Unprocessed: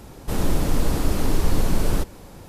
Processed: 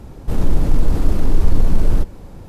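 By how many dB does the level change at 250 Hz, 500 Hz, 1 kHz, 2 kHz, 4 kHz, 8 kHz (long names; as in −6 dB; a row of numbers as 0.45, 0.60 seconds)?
+1.5, −0.5, −2.5, −4.5, −6.5, −8.5 decibels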